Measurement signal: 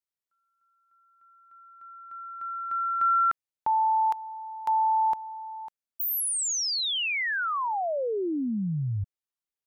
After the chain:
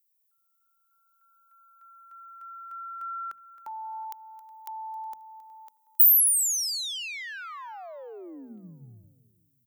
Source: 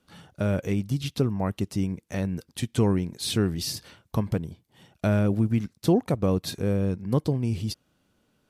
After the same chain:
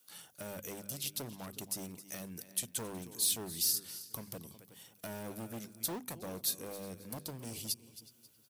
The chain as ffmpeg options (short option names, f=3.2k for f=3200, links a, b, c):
-filter_complex "[0:a]highshelf=f=5.1k:g=7,asplit=2[a][b];[b]aecho=0:1:268|536:0.112|0.0281[c];[a][c]amix=inputs=2:normalize=0,acrossover=split=360[d][e];[e]acompressor=threshold=-38dB:ratio=1.5:attack=0.12:release=714:knee=2.83:detection=peak[f];[d][f]amix=inputs=2:normalize=0,asplit=2[g][h];[h]adelay=367,lowpass=f=3.8k:p=1,volume=-17.5dB,asplit=2[i][j];[j]adelay=367,lowpass=f=3.8k:p=1,volume=0.3,asplit=2[k][l];[l]adelay=367,lowpass=f=3.8k:p=1,volume=0.3[m];[i][k][m]amix=inputs=3:normalize=0[n];[g][n]amix=inputs=2:normalize=0,asoftclip=type=hard:threshold=-23.5dB,aemphasis=mode=production:type=riaa,bandreject=f=50:t=h:w=6,bandreject=f=100:t=h:w=6,bandreject=f=150:t=h:w=6,bandreject=f=200:t=h:w=6,bandreject=f=250:t=h:w=6,volume=-8dB"